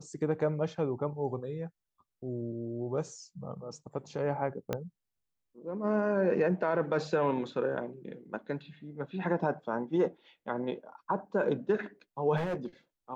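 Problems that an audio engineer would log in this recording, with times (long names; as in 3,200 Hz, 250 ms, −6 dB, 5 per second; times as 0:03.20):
0:04.73: click −17 dBFS
0:12.36–0:12.66: clipping −29 dBFS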